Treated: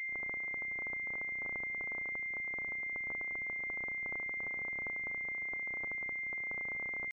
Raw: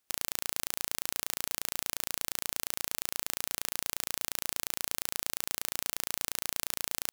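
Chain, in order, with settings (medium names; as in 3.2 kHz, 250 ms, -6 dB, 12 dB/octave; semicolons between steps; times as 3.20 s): high-pass 150 Hz 12 dB/octave; pitch shift +1.5 st; pre-echo 35 ms -20 dB; class-D stage that switches slowly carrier 2.1 kHz; trim -9 dB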